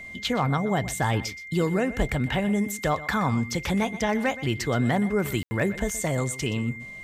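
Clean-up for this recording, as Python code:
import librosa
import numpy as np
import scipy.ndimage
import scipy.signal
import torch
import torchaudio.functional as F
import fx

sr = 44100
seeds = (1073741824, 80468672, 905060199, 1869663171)

y = fx.fix_declip(x, sr, threshold_db=-15.0)
y = fx.notch(y, sr, hz=2100.0, q=30.0)
y = fx.fix_ambience(y, sr, seeds[0], print_start_s=6.52, print_end_s=7.02, start_s=5.43, end_s=5.51)
y = fx.fix_echo_inverse(y, sr, delay_ms=123, level_db=-16.0)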